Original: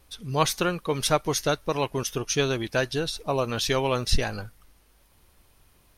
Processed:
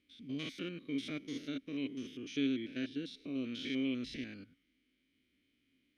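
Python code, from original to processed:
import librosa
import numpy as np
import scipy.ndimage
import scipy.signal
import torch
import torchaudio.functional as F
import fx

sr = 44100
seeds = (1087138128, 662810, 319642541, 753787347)

y = fx.spec_steps(x, sr, hold_ms=100)
y = fx.vowel_filter(y, sr, vowel='i')
y = y * librosa.db_to_amplitude(2.0)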